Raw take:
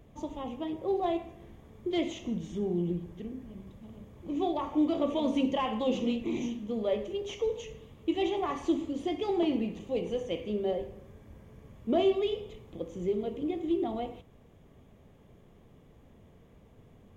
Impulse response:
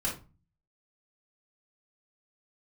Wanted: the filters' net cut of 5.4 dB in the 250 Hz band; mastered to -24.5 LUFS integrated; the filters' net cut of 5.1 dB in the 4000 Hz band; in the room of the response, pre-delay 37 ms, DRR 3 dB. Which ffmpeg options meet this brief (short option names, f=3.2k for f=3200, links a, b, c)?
-filter_complex "[0:a]equalizer=f=250:t=o:g=-7.5,equalizer=f=4k:t=o:g=-7.5,asplit=2[a][b];[1:a]atrim=start_sample=2205,adelay=37[c];[b][c]afir=irnorm=-1:irlink=0,volume=-8.5dB[d];[a][d]amix=inputs=2:normalize=0,volume=8.5dB"